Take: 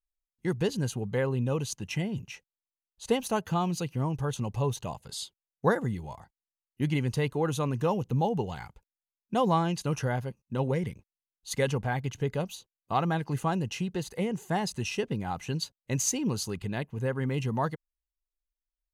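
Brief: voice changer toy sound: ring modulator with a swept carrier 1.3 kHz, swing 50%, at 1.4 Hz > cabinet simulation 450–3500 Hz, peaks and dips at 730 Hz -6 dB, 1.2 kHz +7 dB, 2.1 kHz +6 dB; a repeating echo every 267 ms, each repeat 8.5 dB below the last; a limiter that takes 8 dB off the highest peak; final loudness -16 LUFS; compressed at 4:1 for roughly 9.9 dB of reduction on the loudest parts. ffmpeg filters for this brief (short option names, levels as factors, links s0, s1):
-af "acompressor=threshold=0.0251:ratio=4,alimiter=level_in=1.78:limit=0.0631:level=0:latency=1,volume=0.562,aecho=1:1:267|534|801|1068:0.376|0.143|0.0543|0.0206,aeval=exprs='val(0)*sin(2*PI*1300*n/s+1300*0.5/1.4*sin(2*PI*1.4*n/s))':c=same,highpass=450,equalizer=f=730:t=q:w=4:g=-6,equalizer=f=1200:t=q:w=4:g=7,equalizer=f=2100:t=q:w=4:g=6,lowpass=f=3500:w=0.5412,lowpass=f=3500:w=1.3066,volume=11.9"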